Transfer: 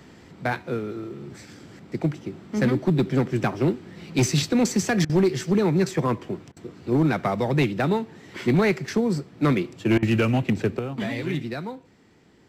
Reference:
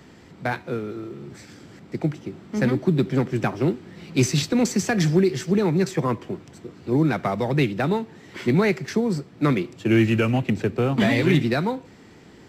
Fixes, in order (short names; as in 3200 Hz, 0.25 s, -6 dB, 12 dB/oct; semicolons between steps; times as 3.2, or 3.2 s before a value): clip repair -14 dBFS; interpolate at 5.05/6.52/9.98, 44 ms; gain 0 dB, from 10.79 s +9 dB